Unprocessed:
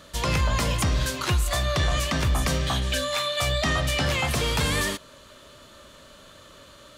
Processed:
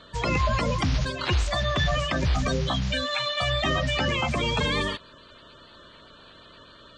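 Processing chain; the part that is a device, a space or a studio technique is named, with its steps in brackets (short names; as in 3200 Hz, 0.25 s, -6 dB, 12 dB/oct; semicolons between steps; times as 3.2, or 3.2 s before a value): clip after many re-uploads (LPF 5700 Hz 24 dB/oct; bin magnitudes rounded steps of 30 dB)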